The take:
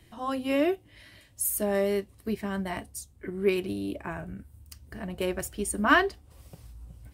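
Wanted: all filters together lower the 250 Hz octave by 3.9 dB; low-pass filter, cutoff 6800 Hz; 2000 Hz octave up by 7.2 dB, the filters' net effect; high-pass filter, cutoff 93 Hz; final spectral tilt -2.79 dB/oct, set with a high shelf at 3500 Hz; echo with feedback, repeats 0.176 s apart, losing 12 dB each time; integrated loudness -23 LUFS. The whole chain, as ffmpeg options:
-af "highpass=93,lowpass=6.8k,equalizer=f=250:t=o:g=-5.5,equalizer=f=2k:t=o:g=8,highshelf=f=3.5k:g=6,aecho=1:1:176|352|528:0.251|0.0628|0.0157,volume=3.5dB"

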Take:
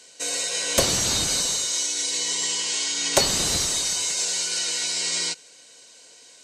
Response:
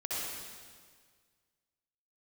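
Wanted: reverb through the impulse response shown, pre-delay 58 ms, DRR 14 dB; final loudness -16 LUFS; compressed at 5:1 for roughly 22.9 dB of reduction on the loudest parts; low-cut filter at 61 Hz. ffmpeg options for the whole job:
-filter_complex "[0:a]highpass=61,acompressor=threshold=-42dB:ratio=5,asplit=2[a][b];[1:a]atrim=start_sample=2205,adelay=58[c];[b][c]afir=irnorm=-1:irlink=0,volume=-19dB[d];[a][d]amix=inputs=2:normalize=0,volume=23.5dB"

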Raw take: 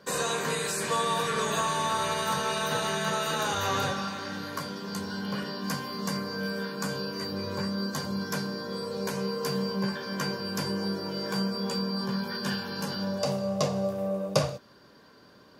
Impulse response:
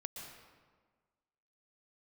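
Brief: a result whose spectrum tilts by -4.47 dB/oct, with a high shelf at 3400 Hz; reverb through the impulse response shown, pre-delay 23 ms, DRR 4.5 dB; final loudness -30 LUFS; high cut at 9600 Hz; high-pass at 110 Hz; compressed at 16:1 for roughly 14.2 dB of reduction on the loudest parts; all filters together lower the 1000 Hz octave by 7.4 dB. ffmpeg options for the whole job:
-filter_complex "[0:a]highpass=110,lowpass=9.6k,equalizer=f=1k:t=o:g=-8.5,highshelf=f=3.4k:g=-6,acompressor=threshold=-36dB:ratio=16,asplit=2[a][b];[1:a]atrim=start_sample=2205,adelay=23[c];[b][c]afir=irnorm=-1:irlink=0,volume=-2.5dB[d];[a][d]amix=inputs=2:normalize=0,volume=9.5dB"

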